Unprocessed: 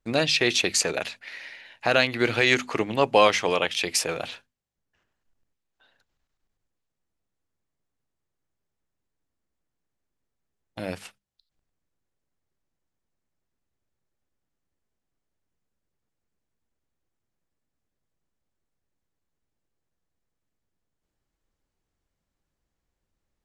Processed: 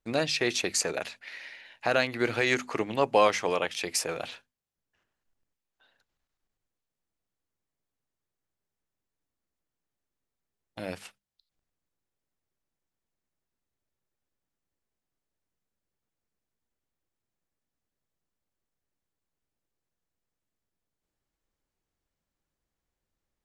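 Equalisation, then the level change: bass shelf 200 Hz -3.5 dB; dynamic bell 3.2 kHz, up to -6 dB, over -37 dBFS, Q 1.3; -3.0 dB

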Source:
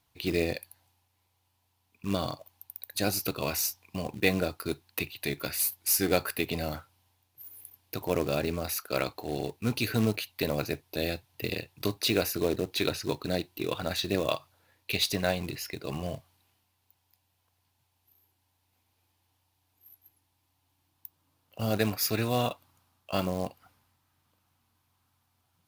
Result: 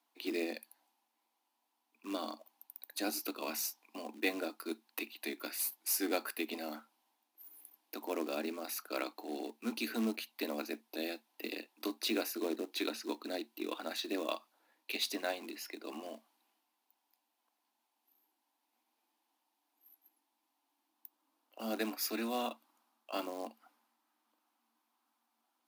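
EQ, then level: dynamic bell 750 Hz, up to -4 dB, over -42 dBFS, Q 0.83; rippled Chebyshev high-pass 220 Hz, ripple 6 dB; -2.0 dB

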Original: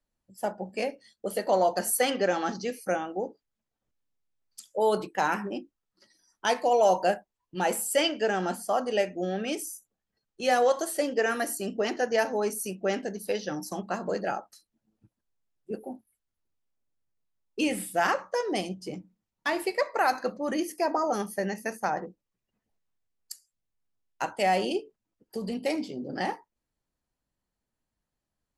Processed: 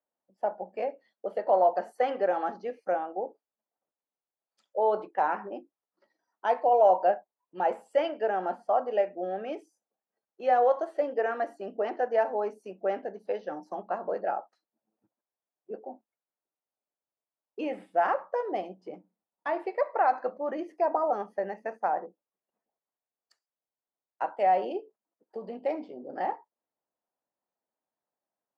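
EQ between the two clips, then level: high-pass 260 Hz 12 dB/octave; low-pass 2.1 kHz 12 dB/octave; peaking EQ 710 Hz +11 dB 1.6 oct; -8.5 dB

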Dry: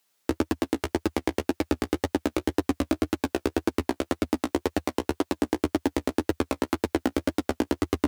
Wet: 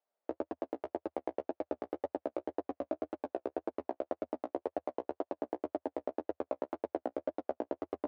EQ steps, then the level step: band-pass filter 620 Hz, Q 3.2; distance through air 61 m; -1.5 dB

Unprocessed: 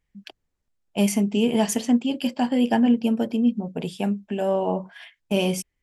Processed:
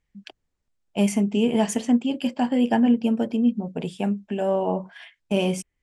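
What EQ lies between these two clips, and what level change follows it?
low-pass 9.6 kHz 24 dB/octave; dynamic bell 4.7 kHz, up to -6 dB, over -49 dBFS, Q 1.3; 0.0 dB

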